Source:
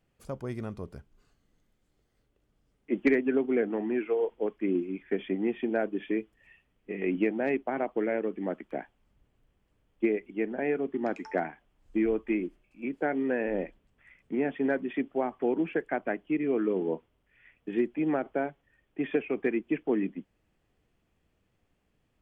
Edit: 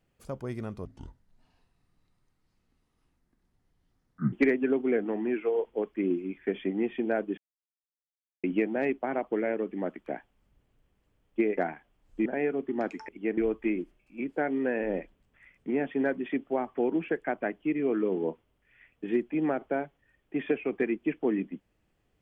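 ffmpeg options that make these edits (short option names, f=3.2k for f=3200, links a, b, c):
-filter_complex "[0:a]asplit=9[a][b][c][d][e][f][g][h][i];[a]atrim=end=0.854[j];[b]atrim=start=0.85:end=2.97,asetpts=PTS-STARTPTS,asetrate=26901,aresample=44100[k];[c]atrim=start=2.966:end=6.02,asetpts=PTS-STARTPTS,afade=t=out:st=3.05:d=0.004:c=hsin[l];[d]atrim=start=6.02:end=7.08,asetpts=PTS-STARTPTS,volume=0[m];[e]atrim=start=7.08:end=10.222,asetpts=PTS-STARTPTS,afade=t=in:d=0.004:c=hsin[n];[f]atrim=start=11.338:end=12.022[o];[g]atrim=start=10.508:end=11.342[p];[h]atrim=start=10.218:end=10.512[q];[i]atrim=start=12.018[r];[j][k]acrossfade=d=0.004:c1=hsin:c2=hsin[s];[l][m][n]concat=n=3:v=0:a=1[t];[s][t]acrossfade=d=0.004:c1=hsin:c2=hsin[u];[u][o]acrossfade=d=0.004:c1=hsin:c2=hsin[v];[v][p]acrossfade=d=0.004:c1=hsin:c2=hsin[w];[w][q]acrossfade=d=0.004:c1=hsin:c2=hsin[x];[x][r]acrossfade=d=0.004:c1=hsin:c2=hsin"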